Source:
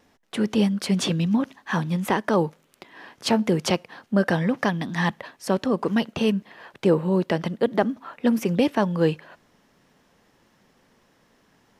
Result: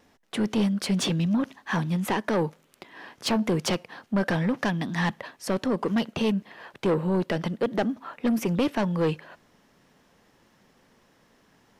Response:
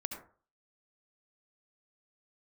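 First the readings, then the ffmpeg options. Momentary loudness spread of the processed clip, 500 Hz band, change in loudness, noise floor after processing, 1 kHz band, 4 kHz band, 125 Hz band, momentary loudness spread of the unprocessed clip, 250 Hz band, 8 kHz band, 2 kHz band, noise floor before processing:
7 LU, −4.0 dB, −3.0 dB, −63 dBFS, −3.5 dB, −2.0 dB, −2.0 dB, 6 LU, −3.0 dB, −1.0 dB, −2.5 dB, −63 dBFS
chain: -af "asoftclip=type=tanh:threshold=-18dB"

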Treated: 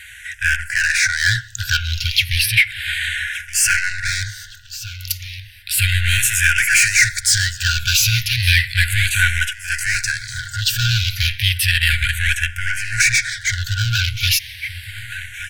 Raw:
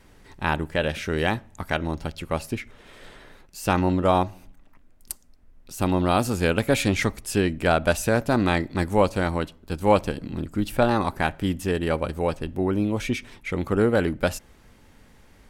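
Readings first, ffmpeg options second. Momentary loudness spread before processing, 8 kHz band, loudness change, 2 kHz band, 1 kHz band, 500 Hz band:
10 LU, +19.0 dB, +7.5 dB, +15.0 dB, −6.0 dB, below −40 dB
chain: -filter_complex "[0:a]asplit=2[link_01][link_02];[link_02]highpass=frequency=720:poles=1,volume=31dB,asoftclip=type=tanh:threshold=-4.5dB[link_03];[link_01][link_03]amix=inputs=2:normalize=0,lowpass=frequency=7400:poles=1,volume=-6dB,dynaudnorm=framelen=240:gausssize=7:maxgain=7dB,asplit=2[link_04][link_05];[link_05]aecho=0:1:1169|2338|3507:0.178|0.0622|0.0218[link_06];[link_04][link_06]amix=inputs=2:normalize=0,afftfilt=real='re*(1-between(b*sr/4096,120,1400))':imag='im*(1-between(b*sr/4096,120,1400))':win_size=4096:overlap=0.75,asplit=2[link_07][link_08];[link_08]afreqshift=-0.33[link_09];[link_07][link_09]amix=inputs=2:normalize=1,volume=1dB"

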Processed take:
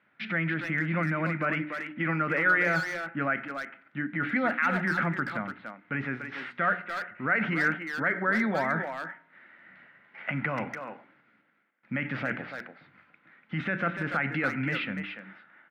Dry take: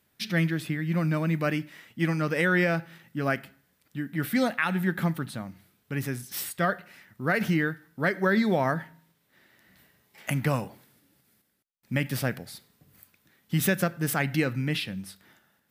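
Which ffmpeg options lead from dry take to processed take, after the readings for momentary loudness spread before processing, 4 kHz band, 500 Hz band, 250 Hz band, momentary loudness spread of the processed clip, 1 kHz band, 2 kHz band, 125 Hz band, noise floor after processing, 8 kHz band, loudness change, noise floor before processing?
13 LU, −6.5 dB, −4.0 dB, −4.0 dB, 13 LU, +2.0 dB, +3.0 dB, −6.0 dB, −67 dBFS, below −15 dB, −1.5 dB, −71 dBFS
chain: -filter_complex "[0:a]bandreject=frequency=60:width_type=h:width=6,bandreject=frequency=120:width_type=h:width=6,bandreject=frequency=180:width_type=h:width=6,bandreject=frequency=240:width_type=h:width=6,bandreject=frequency=300:width_type=h:width=6,bandreject=frequency=360:width_type=h:width=6,bandreject=frequency=420:width_type=h:width=6,alimiter=limit=-23dB:level=0:latency=1:release=14,highpass=190,equalizer=frequency=410:width_type=q:width=4:gain=-6,equalizer=frequency=1400:width_type=q:width=4:gain=9,equalizer=frequency=2100:width_type=q:width=4:gain=6,lowpass=frequency=2600:width=0.5412,lowpass=frequency=2600:width=1.3066,asplit=2[link_01][link_02];[link_02]adelay=290,highpass=300,lowpass=3400,asoftclip=type=hard:threshold=-27dB,volume=-6dB[link_03];[link_01][link_03]amix=inputs=2:normalize=0,volume=3.5dB"

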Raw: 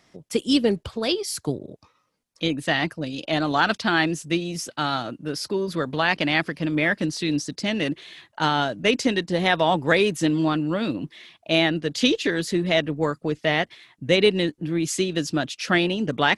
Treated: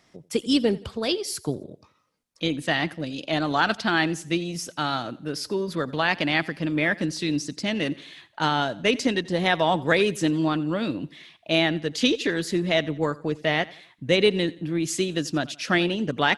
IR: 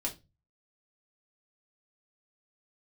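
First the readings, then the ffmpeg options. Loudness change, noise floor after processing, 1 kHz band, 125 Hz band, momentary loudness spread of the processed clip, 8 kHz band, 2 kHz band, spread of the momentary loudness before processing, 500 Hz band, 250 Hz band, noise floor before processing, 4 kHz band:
−1.5 dB, −62 dBFS, −1.5 dB, −1.5 dB, 8 LU, −1.5 dB, −1.5 dB, 8 LU, −1.5 dB, −1.5 dB, −67 dBFS, −1.5 dB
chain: -af "aecho=1:1:87|174|261:0.0891|0.0339|0.0129,volume=-1.5dB"

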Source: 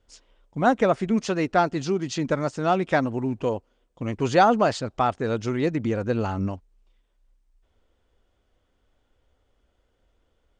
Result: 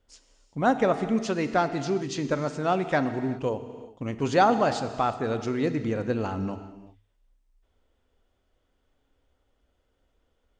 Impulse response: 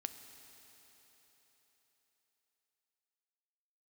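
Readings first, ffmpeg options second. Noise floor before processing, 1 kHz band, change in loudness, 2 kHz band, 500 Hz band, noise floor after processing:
−70 dBFS, −2.5 dB, −2.5 dB, −2.5 dB, −2.5 dB, −72 dBFS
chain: -filter_complex "[0:a]bandreject=frequency=50:width_type=h:width=6,bandreject=frequency=100:width_type=h:width=6[link_01];[1:a]atrim=start_sample=2205,afade=type=out:start_time=0.45:duration=0.01,atrim=end_sample=20286[link_02];[link_01][link_02]afir=irnorm=-1:irlink=0"

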